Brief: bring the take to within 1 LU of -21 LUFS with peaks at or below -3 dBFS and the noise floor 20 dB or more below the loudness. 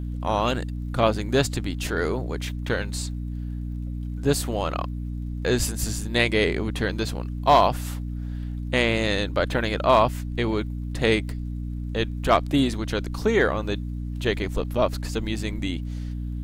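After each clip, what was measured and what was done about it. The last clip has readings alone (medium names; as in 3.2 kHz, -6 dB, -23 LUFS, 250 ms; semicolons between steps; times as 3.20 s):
tick rate 29 per s; hum 60 Hz; highest harmonic 300 Hz; hum level -28 dBFS; loudness -25.0 LUFS; peak level -5.0 dBFS; loudness target -21.0 LUFS
-> de-click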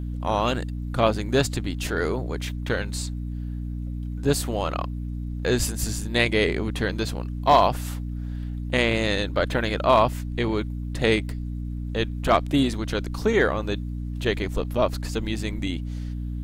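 tick rate 0.24 per s; hum 60 Hz; highest harmonic 300 Hz; hum level -28 dBFS
-> hum notches 60/120/180/240/300 Hz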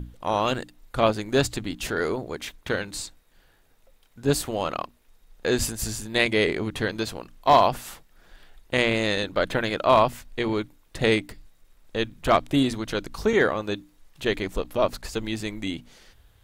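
hum not found; loudness -25.5 LUFS; peak level -4.5 dBFS; loudness target -21.0 LUFS
-> trim +4.5 dB; peak limiter -3 dBFS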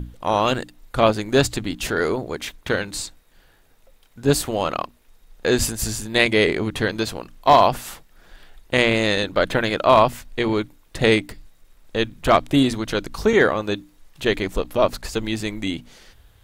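loudness -21.0 LUFS; peak level -3.0 dBFS; noise floor -55 dBFS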